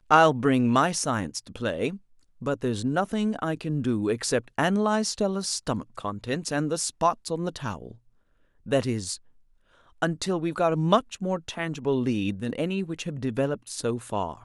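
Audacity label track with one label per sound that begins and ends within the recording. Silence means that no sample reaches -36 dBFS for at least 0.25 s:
2.420000	7.910000	sound
8.660000	9.160000	sound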